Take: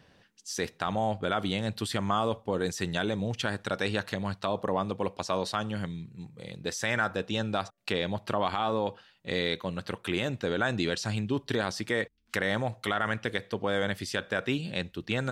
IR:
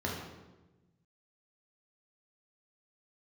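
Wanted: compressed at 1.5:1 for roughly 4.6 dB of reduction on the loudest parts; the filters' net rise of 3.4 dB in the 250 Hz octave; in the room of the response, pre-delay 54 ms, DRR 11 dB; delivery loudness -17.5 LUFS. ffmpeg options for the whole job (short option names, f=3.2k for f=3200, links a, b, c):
-filter_complex "[0:a]equalizer=f=250:t=o:g=4.5,acompressor=threshold=-35dB:ratio=1.5,asplit=2[a][b];[1:a]atrim=start_sample=2205,adelay=54[c];[b][c]afir=irnorm=-1:irlink=0,volume=-17.5dB[d];[a][d]amix=inputs=2:normalize=0,volume=15.5dB"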